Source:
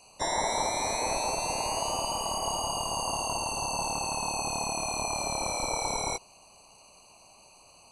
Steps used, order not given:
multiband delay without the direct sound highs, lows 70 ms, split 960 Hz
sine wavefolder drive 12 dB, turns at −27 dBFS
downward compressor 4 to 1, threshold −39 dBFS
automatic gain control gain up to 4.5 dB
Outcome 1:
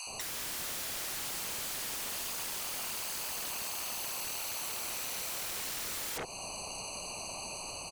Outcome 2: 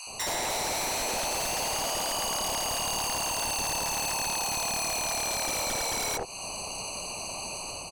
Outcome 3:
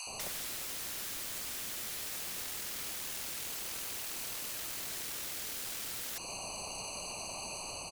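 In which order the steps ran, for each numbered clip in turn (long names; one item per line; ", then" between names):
multiband delay without the direct sound, then sine wavefolder, then automatic gain control, then downward compressor
automatic gain control, then downward compressor, then multiband delay without the direct sound, then sine wavefolder
automatic gain control, then sine wavefolder, then downward compressor, then multiband delay without the direct sound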